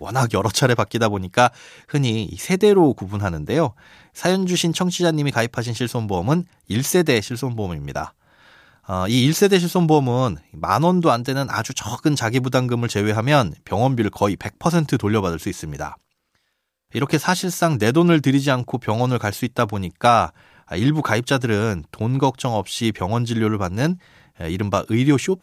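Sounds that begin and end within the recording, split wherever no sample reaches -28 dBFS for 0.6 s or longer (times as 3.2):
8.89–15.94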